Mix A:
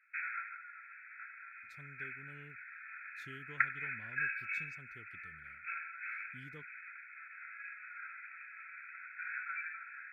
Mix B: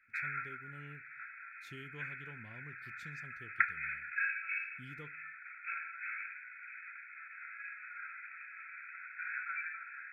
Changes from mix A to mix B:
speech: entry −1.55 s
reverb: on, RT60 0.35 s

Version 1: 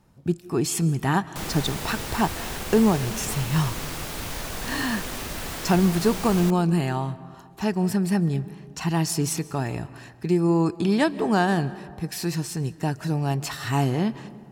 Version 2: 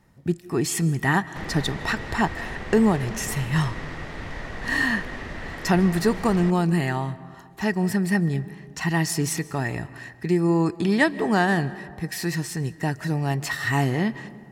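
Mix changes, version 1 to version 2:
background: add head-to-tape spacing loss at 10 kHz 26 dB
master: add parametric band 1,900 Hz +13.5 dB 0.2 octaves

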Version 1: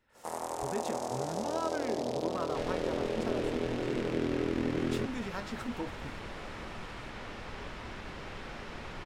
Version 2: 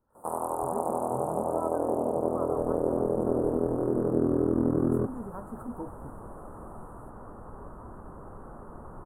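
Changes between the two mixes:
first sound +7.0 dB
master: add elliptic band-stop filter 1,200–9,500 Hz, stop band 40 dB

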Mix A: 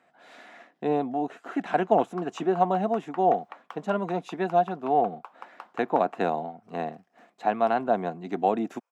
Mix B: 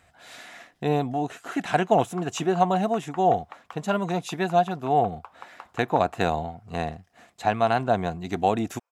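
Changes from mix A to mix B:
speech: remove low-pass filter 1,200 Hz 6 dB per octave
master: remove high-pass filter 200 Hz 24 dB per octave

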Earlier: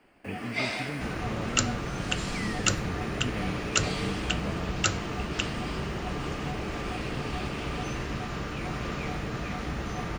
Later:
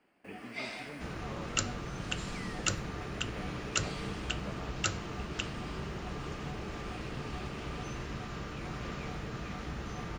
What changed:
speech: add high-pass filter 870 Hz 6 dB per octave
first sound −9.5 dB
second sound −6.0 dB

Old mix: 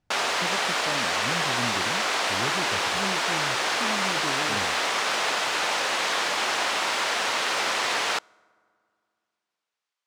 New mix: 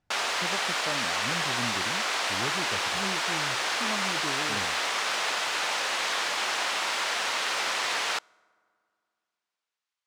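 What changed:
background −5.0 dB
master: add tilt shelving filter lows −3 dB, about 680 Hz

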